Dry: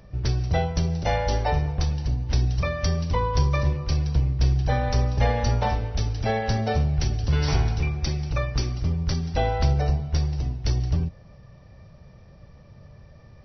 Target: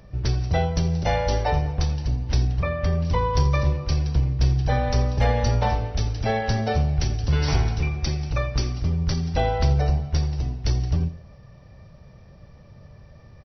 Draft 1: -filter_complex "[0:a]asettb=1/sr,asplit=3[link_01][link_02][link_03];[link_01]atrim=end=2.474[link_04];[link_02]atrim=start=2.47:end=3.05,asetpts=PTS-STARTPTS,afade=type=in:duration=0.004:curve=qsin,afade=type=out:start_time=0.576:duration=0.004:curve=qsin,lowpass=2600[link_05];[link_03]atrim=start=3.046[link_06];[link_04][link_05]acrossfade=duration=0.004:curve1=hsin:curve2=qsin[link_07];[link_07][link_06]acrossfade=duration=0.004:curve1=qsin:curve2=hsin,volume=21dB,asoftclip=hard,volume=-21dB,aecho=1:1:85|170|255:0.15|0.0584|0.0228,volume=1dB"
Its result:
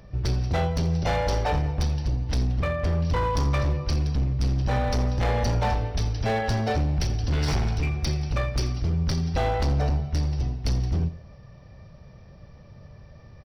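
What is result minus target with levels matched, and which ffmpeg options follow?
gain into a clipping stage and back: distortion +27 dB
-filter_complex "[0:a]asettb=1/sr,asplit=3[link_01][link_02][link_03];[link_01]atrim=end=2.474[link_04];[link_02]atrim=start=2.47:end=3.05,asetpts=PTS-STARTPTS,afade=type=in:duration=0.004:curve=qsin,afade=type=out:start_time=0.576:duration=0.004:curve=qsin,lowpass=2600[link_05];[link_03]atrim=start=3.046[link_06];[link_04][link_05]acrossfade=duration=0.004:curve1=hsin:curve2=qsin[link_07];[link_07][link_06]acrossfade=duration=0.004:curve1=qsin:curve2=hsin,volume=11.5dB,asoftclip=hard,volume=-11.5dB,aecho=1:1:85|170|255:0.15|0.0584|0.0228,volume=1dB"

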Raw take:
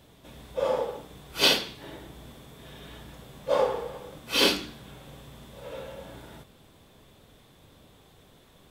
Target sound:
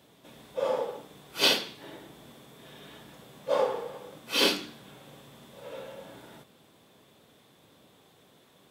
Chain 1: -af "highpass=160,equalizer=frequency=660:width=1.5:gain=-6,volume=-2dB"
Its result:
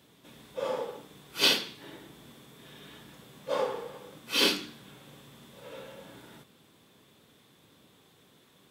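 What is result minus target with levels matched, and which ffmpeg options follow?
500 Hz band −3.0 dB
-af "highpass=160,volume=-2dB"

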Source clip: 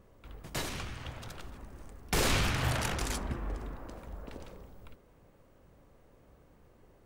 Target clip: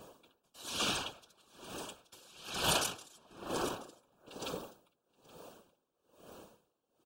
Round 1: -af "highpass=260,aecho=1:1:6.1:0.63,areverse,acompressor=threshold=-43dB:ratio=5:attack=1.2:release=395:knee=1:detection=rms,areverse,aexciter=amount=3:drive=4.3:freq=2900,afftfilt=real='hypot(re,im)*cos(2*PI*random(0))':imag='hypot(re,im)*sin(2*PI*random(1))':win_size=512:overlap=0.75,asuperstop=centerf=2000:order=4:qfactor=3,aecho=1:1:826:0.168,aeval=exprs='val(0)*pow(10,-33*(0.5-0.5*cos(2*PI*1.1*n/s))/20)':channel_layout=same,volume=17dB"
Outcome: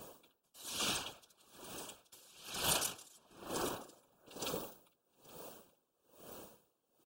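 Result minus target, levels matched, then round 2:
downward compressor: peak gain reduction +6 dB; 8,000 Hz band +2.5 dB
-af "highpass=260,highshelf=frequency=7900:gain=-11,aecho=1:1:6.1:0.63,areverse,acompressor=threshold=-36.5dB:ratio=5:attack=1.2:release=395:knee=1:detection=rms,areverse,aexciter=amount=3:drive=4.3:freq=2900,afftfilt=real='hypot(re,im)*cos(2*PI*random(0))':imag='hypot(re,im)*sin(2*PI*random(1))':win_size=512:overlap=0.75,asuperstop=centerf=2000:order=4:qfactor=3,aecho=1:1:826:0.168,aeval=exprs='val(0)*pow(10,-33*(0.5-0.5*cos(2*PI*1.1*n/s))/20)':channel_layout=same,volume=17dB"

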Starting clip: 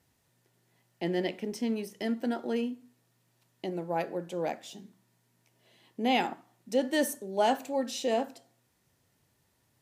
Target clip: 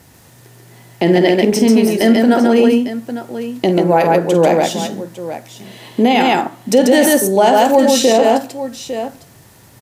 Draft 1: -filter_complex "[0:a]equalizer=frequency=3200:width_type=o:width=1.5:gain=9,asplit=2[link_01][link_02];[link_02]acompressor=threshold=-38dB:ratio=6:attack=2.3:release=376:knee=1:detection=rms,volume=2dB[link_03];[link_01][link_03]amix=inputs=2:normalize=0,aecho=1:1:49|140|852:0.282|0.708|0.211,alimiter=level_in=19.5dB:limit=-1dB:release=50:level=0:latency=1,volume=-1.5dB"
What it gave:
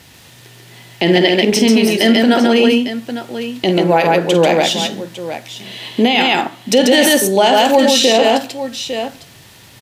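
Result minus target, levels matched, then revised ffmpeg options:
4,000 Hz band +8.0 dB
-filter_complex "[0:a]equalizer=frequency=3200:width_type=o:width=1.5:gain=-2.5,asplit=2[link_01][link_02];[link_02]acompressor=threshold=-38dB:ratio=6:attack=2.3:release=376:knee=1:detection=rms,volume=2dB[link_03];[link_01][link_03]amix=inputs=2:normalize=0,aecho=1:1:49|140|852:0.282|0.708|0.211,alimiter=level_in=19.5dB:limit=-1dB:release=50:level=0:latency=1,volume=-1.5dB"

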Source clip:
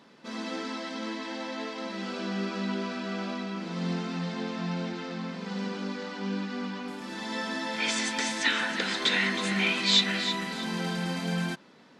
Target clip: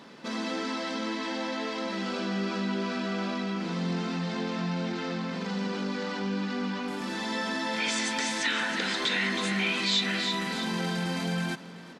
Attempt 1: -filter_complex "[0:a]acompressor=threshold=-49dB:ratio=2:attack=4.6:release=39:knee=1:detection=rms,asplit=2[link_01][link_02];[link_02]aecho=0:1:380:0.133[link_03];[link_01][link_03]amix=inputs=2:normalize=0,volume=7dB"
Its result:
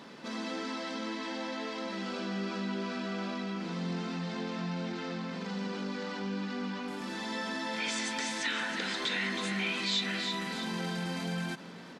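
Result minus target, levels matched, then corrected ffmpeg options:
downward compressor: peak gain reduction +5 dB
-filter_complex "[0:a]acompressor=threshold=-39.5dB:ratio=2:attack=4.6:release=39:knee=1:detection=rms,asplit=2[link_01][link_02];[link_02]aecho=0:1:380:0.133[link_03];[link_01][link_03]amix=inputs=2:normalize=0,volume=7dB"

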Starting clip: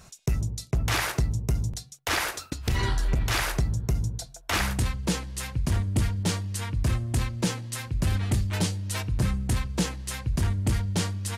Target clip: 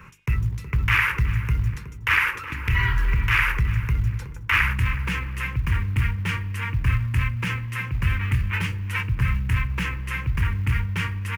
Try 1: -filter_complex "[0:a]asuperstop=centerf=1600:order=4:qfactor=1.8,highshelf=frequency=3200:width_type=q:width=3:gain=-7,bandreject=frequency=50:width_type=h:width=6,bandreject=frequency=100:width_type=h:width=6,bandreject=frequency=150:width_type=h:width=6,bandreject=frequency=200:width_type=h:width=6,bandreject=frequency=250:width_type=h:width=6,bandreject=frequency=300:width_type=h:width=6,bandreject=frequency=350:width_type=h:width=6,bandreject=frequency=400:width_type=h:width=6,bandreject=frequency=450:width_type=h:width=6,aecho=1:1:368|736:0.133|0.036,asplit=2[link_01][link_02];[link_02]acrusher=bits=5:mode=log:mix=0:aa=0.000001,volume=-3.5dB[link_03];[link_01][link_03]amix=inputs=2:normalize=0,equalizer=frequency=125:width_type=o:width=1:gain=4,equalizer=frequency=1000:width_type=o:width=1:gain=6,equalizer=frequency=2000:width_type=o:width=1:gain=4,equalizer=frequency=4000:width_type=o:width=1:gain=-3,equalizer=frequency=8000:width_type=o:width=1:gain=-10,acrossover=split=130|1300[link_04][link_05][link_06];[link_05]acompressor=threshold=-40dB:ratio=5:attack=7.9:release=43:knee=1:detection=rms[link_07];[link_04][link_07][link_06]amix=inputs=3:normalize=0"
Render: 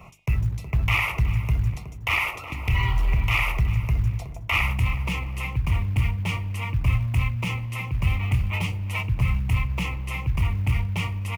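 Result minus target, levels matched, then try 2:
500 Hz band +4.0 dB
-filter_complex "[0:a]asuperstop=centerf=690:order=4:qfactor=1.8,highshelf=frequency=3200:width_type=q:width=3:gain=-7,bandreject=frequency=50:width_type=h:width=6,bandreject=frequency=100:width_type=h:width=6,bandreject=frequency=150:width_type=h:width=6,bandreject=frequency=200:width_type=h:width=6,bandreject=frequency=250:width_type=h:width=6,bandreject=frequency=300:width_type=h:width=6,bandreject=frequency=350:width_type=h:width=6,bandreject=frequency=400:width_type=h:width=6,bandreject=frequency=450:width_type=h:width=6,aecho=1:1:368|736:0.133|0.036,asplit=2[link_01][link_02];[link_02]acrusher=bits=5:mode=log:mix=0:aa=0.000001,volume=-3.5dB[link_03];[link_01][link_03]amix=inputs=2:normalize=0,equalizer=frequency=125:width_type=o:width=1:gain=4,equalizer=frequency=1000:width_type=o:width=1:gain=6,equalizer=frequency=2000:width_type=o:width=1:gain=4,equalizer=frequency=4000:width_type=o:width=1:gain=-3,equalizer=frequency=8000:width_type=o:width=1:gain=-10,acrossover=split=130|1300[link_04][link_05][link_06];[link_05]acompressor=threshold=-40dB:ratio=5:attack=7.9:release=43:knee=1:detection=rms[link_07];[link_04][link_07][link_06]amix=inputs=3:normalize=0"

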